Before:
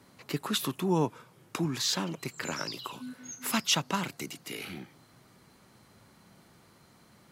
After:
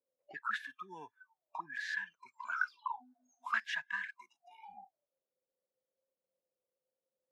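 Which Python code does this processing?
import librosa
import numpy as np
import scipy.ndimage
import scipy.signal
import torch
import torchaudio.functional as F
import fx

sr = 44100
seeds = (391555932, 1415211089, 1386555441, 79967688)

y = fx.cvsd(x, sr, bps=64000)
y = fx.auto_wah(y, sr, base_hz=490.0, top_hz=1700.0, q=20.0, full_db=-29.5, direction='up')
y = fx.noise_reduce_blind(y, sr, reduce_db=27)
y = y * 10.0 ** (13.0 / 20.0)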